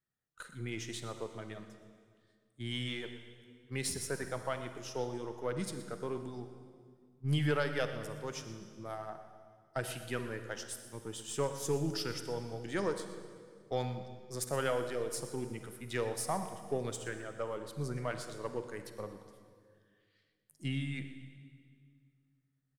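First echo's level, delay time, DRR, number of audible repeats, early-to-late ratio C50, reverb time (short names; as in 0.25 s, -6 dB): -15.5 dB, 0.12 s, 7.5 dB, 1, 8.0 dB, 2.0 s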